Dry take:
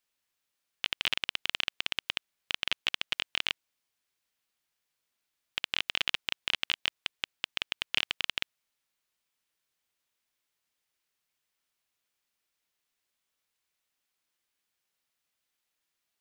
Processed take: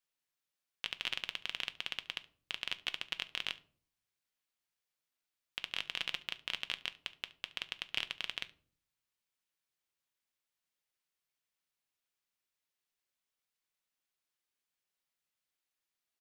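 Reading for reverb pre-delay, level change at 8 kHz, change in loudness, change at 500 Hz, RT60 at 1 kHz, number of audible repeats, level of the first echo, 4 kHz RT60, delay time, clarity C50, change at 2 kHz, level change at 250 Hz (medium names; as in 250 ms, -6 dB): 5 ms, -7.5 dB, -7.0 dB, -7.0 dB, 0.40 s, 1, -21.5 dB, 0.30 s, 71 ms, 18.5 dB, -7.0 dB, -7.0 dB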